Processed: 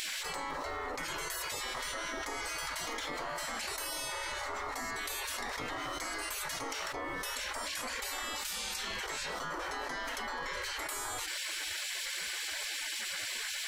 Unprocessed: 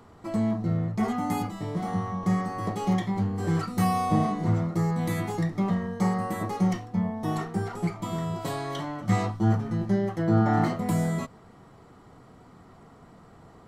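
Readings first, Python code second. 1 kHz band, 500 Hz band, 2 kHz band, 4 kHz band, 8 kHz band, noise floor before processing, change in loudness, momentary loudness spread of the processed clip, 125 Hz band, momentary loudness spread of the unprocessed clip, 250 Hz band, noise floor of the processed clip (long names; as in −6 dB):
−8.0 dB, −10.5 dB, +4.0 dB, +9.5 dB, +8.5 dB, −52 dBFS, −9.0 dB, 2 LU, −29.5 dB, 7 LU, −24.0 dB, −39 dBFS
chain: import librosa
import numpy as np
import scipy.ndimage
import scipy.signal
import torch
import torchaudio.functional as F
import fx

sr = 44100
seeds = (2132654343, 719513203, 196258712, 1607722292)

y = fx.spec_gate(x, sr, threshold_db=-25, keep='weak')
y = fx.env_flatten(y, sr, amount_pct=100)
y = F.gain(torch.from_numpy(y), -1.0).numpy()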